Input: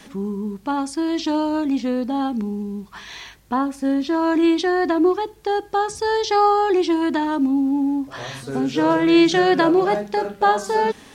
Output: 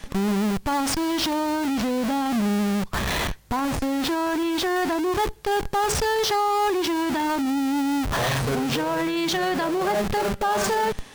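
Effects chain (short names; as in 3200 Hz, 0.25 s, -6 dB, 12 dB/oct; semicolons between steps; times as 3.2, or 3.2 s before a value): in parallel at -5 dB: Schmitt trigger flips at -34.5 dBFS; on the sum: limiter -16 dBFS, peak gain reduction 10.5 dB; bell 300 Hz -5.5 dB 0.83 oct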